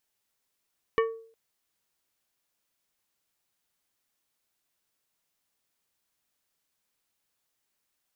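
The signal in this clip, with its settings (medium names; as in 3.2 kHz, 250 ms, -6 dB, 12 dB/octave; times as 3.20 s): glass hit plate, length 0.36 s, lowest mode 452 Hz, decay 0.51 s, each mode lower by 4.5 dB, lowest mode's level -19 dB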